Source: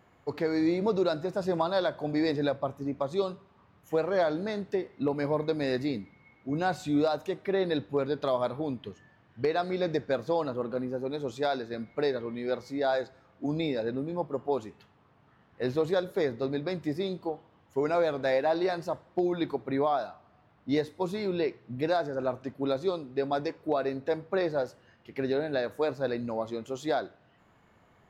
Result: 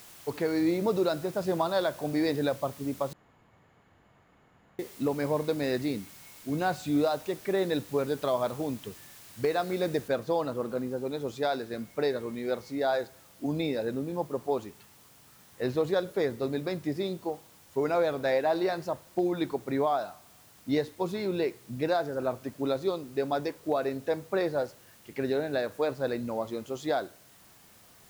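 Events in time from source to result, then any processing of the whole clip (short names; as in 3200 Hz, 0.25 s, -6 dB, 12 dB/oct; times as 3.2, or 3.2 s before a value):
3.13–4.79 room tone
10.08 noise floor step -51 dB -58 dB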